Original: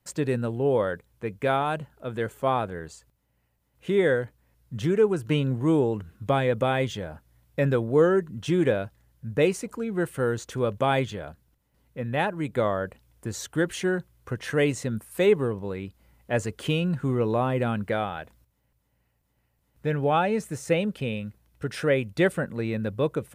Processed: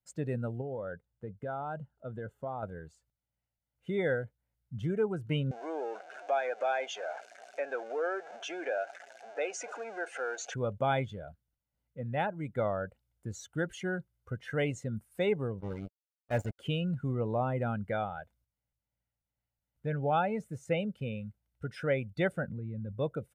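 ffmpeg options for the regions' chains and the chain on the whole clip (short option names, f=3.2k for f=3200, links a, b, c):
-filter_complex "[0:a]asettb=1/sr,asplit=3[a][b][c];[a]atrim=end=0.614[d];[b]atrim=start=0.61:end=2.63,asetpts=PTS-STARTPTS,afade=t=in:d=0.004:c=qsin,afade=t=out:st=2.016:d=0.004:c=qsin,highshelf=f=4k:g=-9,bandreject=f=2.3k:w=5.6,acompressor=threshold=-27dB:ratio=4:attack=3.2:release=140:knee=1:detection=peak[e];[c]atrim=start=2.626[f];[d][e]acrossfade=d=0.004:c1=hsin:c2=qsin[g];[g][f]acrossfade=d=0.004:c1=qsin:c2=hsin,asettb=1/sr,asplit=3[h][i][j];[h]atrim=end=5.514[k];[i]atrim=start=5.51:end=10.54,asetpts=PTS-STARTPTS,afade=t=in:d=0.004:c=qsin,afade=t=out:st=5.026:d=0.004:c=qsin,aeval=exprs='val(0)+0.5*0.0398*sgn(val(0))':c=same,highpass=f=380:w=0.5412,highpass=f=380:w=1.3066,equalizer=f=700:t=q:w=4:g=9,equalizer=f=1.6k:t=q:w=4:g=7,equalizer=f=2.5k:t=q:w=4:g=6,equalizer=f=6.3k:t=q:w=4:g=5,lowpass=f=7.9k:w=0.5412,lowpass=f=7.9k:w=1.3066,acompressor=threshold=-32dB:ratio=1.5:attack=3.2:release=140:knee=1:detection=peak[l];[j]atrim=start=10.536[m];[k][l]acrossfade=d=0.004:c1=hsin:c2=qsin[n];[n][m]acrossfade=d=0.004:c1=qsin:c2=hsin,asettb=1/sr,asplit=3[o][p][q];[o]atrim=end=15.604[r];[p]atrim=start=15.6:end=16.59,asetpts=PTS-STARTPTS,afade=t=in:d=0.004:c=qsin,afade=t=out:st=0.986:d=0.004:c=qsin,lowshelf=f=140:g=4,acrusher=bits=4:mix=0:aa=0.5[s];[q]atrim=start=16.586[t];[r][s]acrossfade=d=0.004:c1=hsin:c2=qsin[u];[u][t]acrossfade=d=0.004:c1=qsin:c2=hsin,asettb=1/sr,asplit=3[v][w][x];[v]atrim=end=22.484[y];[w]atrim=start=22.48:end=22.92,asetpts=PTS-STARTPTS,afade=t=in:d=0.004:c=qsin,afade=t=out:st=0.436:d=0.004:c=qsin,bass=f=250:g=9,treble=f=4k:g=-12,acompressor=threshold=-28dB:ratio=10:attack=3.2:release=140:knee=1:detection=peak[z];[x]atrim=start=22.916[aa];[y][z]acrossfade=d=0.004:c1=hsin:c2=qsin[ab];[ab][aa]acrossfade=d=0.004:c1=qsin:c2=hsin,afftdn=nr=13:nf=-34,aecho=1:1:1.4:0.38,volume=-7dB"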